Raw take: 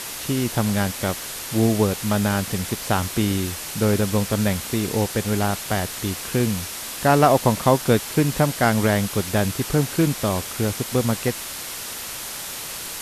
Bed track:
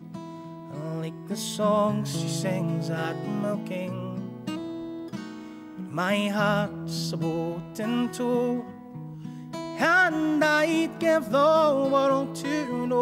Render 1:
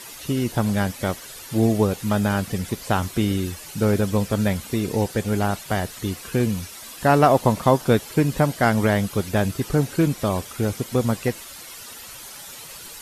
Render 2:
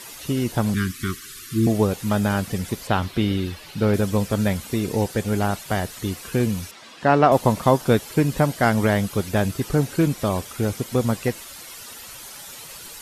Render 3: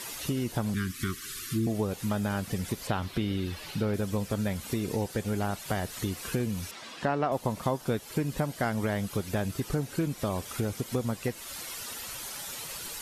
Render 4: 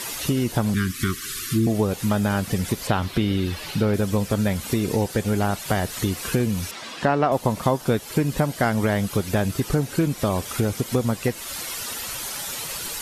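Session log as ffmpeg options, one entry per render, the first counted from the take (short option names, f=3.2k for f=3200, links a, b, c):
-af "afftdn=nr=11:nf=-33"
-filter_complex "[0:a]asettb=1/sr,asplit=3[a][b][c];[a]atrim=end=0.744[d];[b]atrim=start=0.74:end=1.67,asetpts=PTS-STARTPTS,afade=t=in:d=0.004:c=qsin,afade=t=out:st=0.926:d=0.004:c=qsin,asuperstop=centerf=670:order=20:qfactor=1[e];[c]atrim=start=1.666[f];[d][e]acrossfade=d=0.004:c1=hsin:c2=qsin[g];[g][f]acrossfade=d=0.004:c1=qsin:c2=hsin,asettb=1/sr,asplit=3[h][i][j];[h]atrim=end=2.874[k];[i]atrim=start=2.87:end=3.94,asetpts=PTS-STARTPTS,afade=t=in:d=0.004:c=qsin,afade=t=out:st=1.066:d=0.004:c=qsin,highshelf=f=5.3k:t=q:w=1.5:g=-8[l];[j]atrim=start=3.936[m];[k][l]acrossfade=d=0.004:c1=hsin:c2=qsin[n];[n][m]acrossfade=d=0.004:c1=qsin:c2=hsin,asettb=1/sr,asplit=3[o][p][q];[o]atrim=end=6.714[r];[p]atrim=start=6.71:end=7.32,asetpts=PTS-STARTPTS,afade=t=in:d=0.004:c=qsin,afade=t=out:st=0.606:d=0.004:c=qsin,highpass=140,lowpass=4.1k[s];[q]atrim=start=7.316[t];[r][s]acrossfade=d=0.004:c1=hsin:c2=qsin[u];[u][t]acrossfade=d=0.004:c1=qsin:c2=hsin"
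-af "acompressor=threshold=-29dB:ratio=3"
-af "volume=8dB"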